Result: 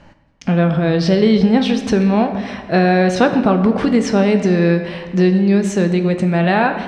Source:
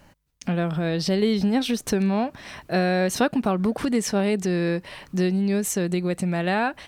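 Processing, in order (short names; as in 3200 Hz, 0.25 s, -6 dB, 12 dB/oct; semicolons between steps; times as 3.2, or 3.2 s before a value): air absorption 130 m; on a send: reverb RT60 1.5 s, pre-delay 6 ms, DRR 6 dB; on the sum: gain +8 dB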